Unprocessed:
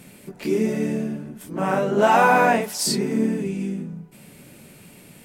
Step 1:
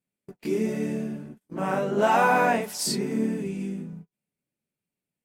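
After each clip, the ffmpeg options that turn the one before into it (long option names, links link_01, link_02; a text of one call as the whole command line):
ffmpeg -i in.wav -af "agate=range=-38dB:threshold=-35dB:ratio=16:detection=peak,volume=-4.5dB" out.wav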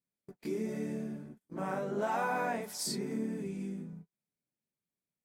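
ffmpeg -i in.wav -af "equalizer=frequency=2800:width=7.7:gain=-9,acompressor=threshold=-26dB:ratio=2,volume=-7dB" out.wav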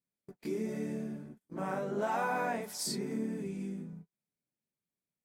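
ffmpeg -i in.wav -af anull out.wav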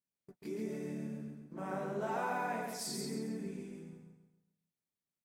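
ffmpeg -i in.wav -af "aecho=1:1:136|272|408|544|680:0.668|0.261|0.102|0.0396|0.0155,volume=-5.5dB" out.wav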